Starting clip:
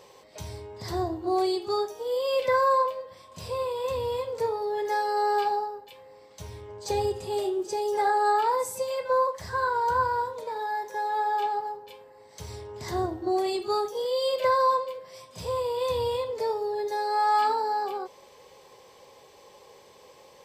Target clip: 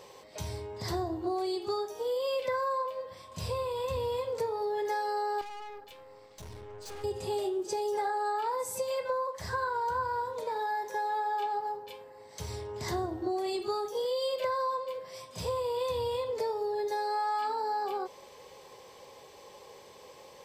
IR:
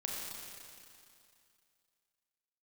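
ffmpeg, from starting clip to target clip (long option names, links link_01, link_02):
-filter_complex "[0:a]acompressor=threshold=-30dB:ratio=6,asettb=1/sr,asplit=3[link_01][link_02][link_03];[link_01]atrim=end=3.014[link_04];[link_02]atrim=start=3.01:end=3.97,asetpts=PTS-STARTPTS,afade=type=in:duration=0.004:curve=qsin,afade=type=out:start_time=0.956:duration=0.004:curve=qsin,asubboost=boost=6.5:cutoff=220[link_05];[link_03]atrim=start=3.966[link_06];[link_04][link_05]acrossfade=duration=0.004:curve1=hsin:curve2=qsin[link_07];[link_07][link_06]acrossfade=duration=0.004:curve1=qsin:curve2=hsin,asettb=1/sr,asplit=3[link_08][link_09][link_10];[link_08]atrim=end=5.414[link_11];[link_09]atrim=start=5.41:end=7.04,asetpts=PTS-STARTPTS,afade=type=in:duration=0.004:curve=qsin,afade=type=out:start_time=1.626:duration=0.004:curve=qsin,aeval=exprs='(tanh(141*val(0)+0.65)-tanh(0.65))/141':channel_layout=same[link_12];[link_10]atrim=start=7.036[link_13];[link_11][link_12]acrossfade=duration=0.004:curve1=hsin:curve2=qsin[link_14];[link_14][link_13]acrossfade=duration=0.004:curve1=qsin:curve2=hsin,volume=1dB"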